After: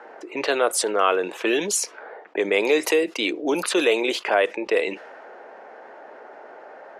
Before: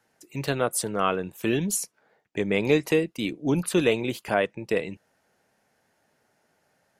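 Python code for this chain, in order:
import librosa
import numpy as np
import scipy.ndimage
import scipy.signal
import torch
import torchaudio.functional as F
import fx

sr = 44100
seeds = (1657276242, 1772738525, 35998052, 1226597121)

y = fx.env_lowpass(x, sr, base_hz=1200.0, full_db=-19.5)
y = scipy.signal.sosfilt(scipy.signal.butter(4, 370.0, 'highpass', fs=sr, output='sos'), y)
y = fx.env_flatten(y, sr, amount_pct=50)
y = y * 10.0 ** (2.5 / 20.0)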